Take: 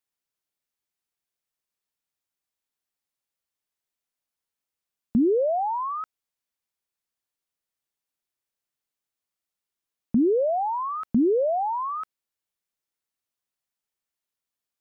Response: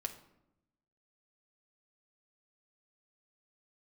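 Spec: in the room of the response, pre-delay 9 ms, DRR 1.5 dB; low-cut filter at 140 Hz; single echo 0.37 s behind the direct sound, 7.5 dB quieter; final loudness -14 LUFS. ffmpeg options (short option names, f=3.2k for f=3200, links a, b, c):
-filter_complex "[0:a]highpass=140,aecho=1:1:370:0.422,asplit=2[a][b];[1:a]atrim=start_sample=2205,adelay=9[c];[b][c]afir=irnorm=-1:irlink=0,volume=-1dB[d];[a][d]amix=inputs=2:normalize=0,volume=8dB"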